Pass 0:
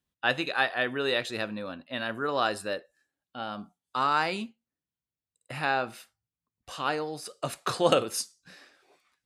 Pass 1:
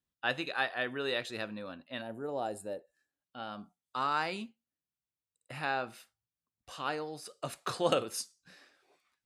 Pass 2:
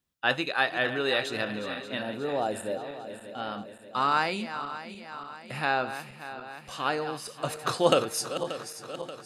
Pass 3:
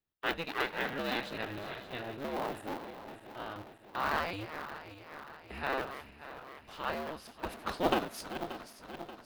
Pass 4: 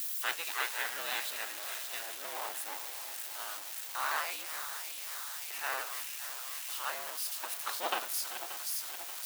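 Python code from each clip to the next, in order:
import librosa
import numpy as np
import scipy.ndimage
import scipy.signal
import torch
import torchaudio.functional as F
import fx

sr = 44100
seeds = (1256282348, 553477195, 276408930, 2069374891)

y1 = fx.spec_box(x, sr, start_s=2.02, length_s=0.85, low_hz=960.0, high_hz=6500.0, gain_db=-14)
y1 = F.gain(torch.from_numpy(y1), -6.0).numpy()
y2 = fx.reverse_delay_fb(y1, sr, ms=291, feedback_pct=73, wet_db=-11)
y2 = F.gain(torch.from_numpy(y2), 6.5).numpy()
y3 = fx.cycle_switch(y2, sr, every=2, mode='inverted')
y3 = fx.peak_eq(y3, sr, hz=7900.0, db=-11.0, octaves=1.2)
y3 = F.gain(torch.from_numpy(y3), -7.0).numpy()
y4 = y3 + 0.5 * 10.0 ** (-29.5 / 20.0) * np.diff(np.sign(y3), prepend=np.sign(y3[:1]))
y4 = scipy.signal.sosfilt(scipy.signal.butter(2, 900.0, 'highpass', fs=sr, output='sos'), y4)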